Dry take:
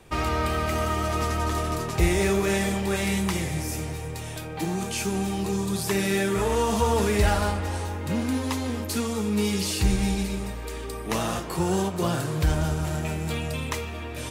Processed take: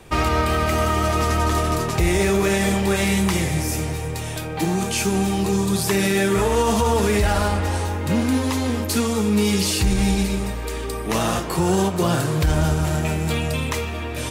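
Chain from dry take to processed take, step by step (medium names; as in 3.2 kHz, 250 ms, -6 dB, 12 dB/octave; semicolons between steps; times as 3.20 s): peak limiter -16.5 dBFS, peak gain reduction 6 dB; trim +6.5 dB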